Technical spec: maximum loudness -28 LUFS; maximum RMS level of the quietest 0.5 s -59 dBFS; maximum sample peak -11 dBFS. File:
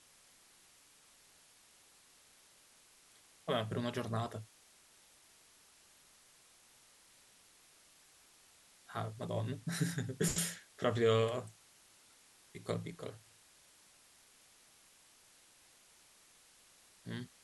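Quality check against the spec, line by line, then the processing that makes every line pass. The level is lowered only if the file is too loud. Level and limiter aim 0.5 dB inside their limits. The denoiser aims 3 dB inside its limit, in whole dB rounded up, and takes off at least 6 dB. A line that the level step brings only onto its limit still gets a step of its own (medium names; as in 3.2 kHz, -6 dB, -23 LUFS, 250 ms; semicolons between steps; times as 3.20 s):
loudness -37.5 LUFS: pass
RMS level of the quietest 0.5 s -65 dBFS: pass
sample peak -18.5 dBFS: pass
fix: none needed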